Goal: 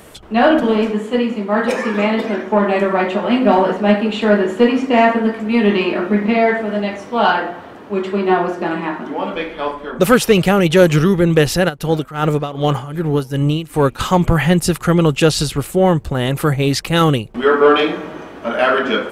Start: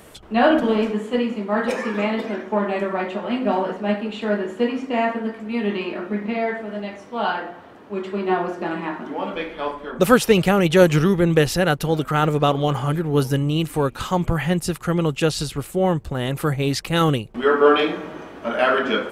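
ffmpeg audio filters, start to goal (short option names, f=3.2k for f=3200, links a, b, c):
-filter_complex "[0:a]dynaudnorm=f=210:g=21:m=6.5dB,asoftclip=type=tanh:threshold=-5dB,asplit=3[a][b][c];[a]afade=t=out:st=11.68:d=0.02[d];[b]tremolo=f=2.6:d=0.82,afade=t=in:st=11.68:d=0.02,afade=t=out:st=13.98:d=0.02[e];[c]afade=t=in:st=13.98:d=0.02[f];[d][e][f]amix=inputs=3:normalize=0,volume=4.5dB"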